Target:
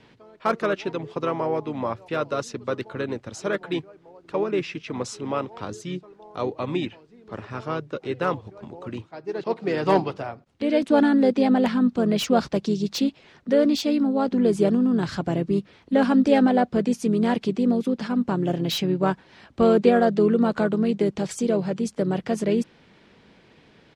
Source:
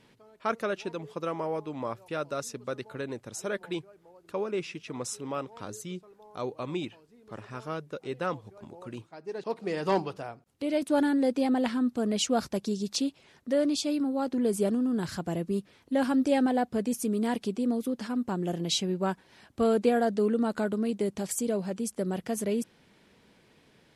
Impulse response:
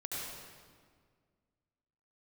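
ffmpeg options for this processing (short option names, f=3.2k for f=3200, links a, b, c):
-filter_complex "[0:a]lowpass=4.9k,acrossover=split=300|1200[a][b][c];[c]asoftclip=type=hard:threshold=-31dB[d];[a][b][d]amix=inputs=3:normalize=0,asplit=2[e][f];[f]asetrate=35002,aresample=44100,atempo=1.25992,volume=-10dB[g];[e][g]amix=inputs=2:normalize=0,volume=6.5dB"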